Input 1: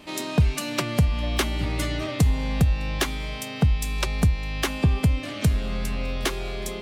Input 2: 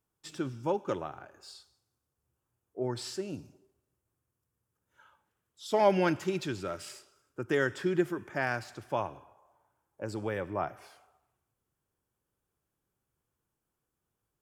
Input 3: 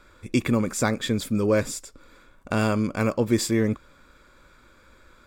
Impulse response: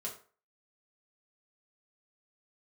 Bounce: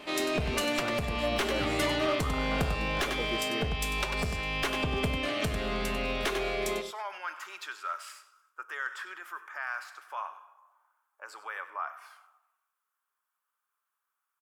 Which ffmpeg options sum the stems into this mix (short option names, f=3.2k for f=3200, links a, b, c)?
-filter_complex "[0:a]bandreject=f=930:w=23,volume=1dB,asplit=3[a][b][c];[b]volume=-5dB[d];[c]volume=-9dB[e];[1:a]highshelf=f=8.5k:g=11.5,alimiter=level_in=1dB:limit=-24dB:level=0:latency=1,volume=-1dB,highpass=f=1.2k:t=q:w=3.4,adelay=1200,volume=-2dB,asplit=3[f][g][h];[g]volume=-13.5dB[i];[h]volume=-15dB[j];[2:a]volume=-11dB[k];[3:a]atrim=start_sample=2205[l];[d][i]amix=inputs=2:normalize=0[m];[m][l]afir=irnorm=-1:irlink=0[n];[e][j]amix=inputs=2:normalize=0,aecho=0:1:96:1[o];[a][f][k][n][o]amix=inputs=5:normalize=0,bass=f=250:g=-14,treble=f=4k:g=-7,aeval=exprs='clip(val(0),-1,0.0668)':c=same,alimiter=limit=-16.5dB:level=0:latency=1:release=173"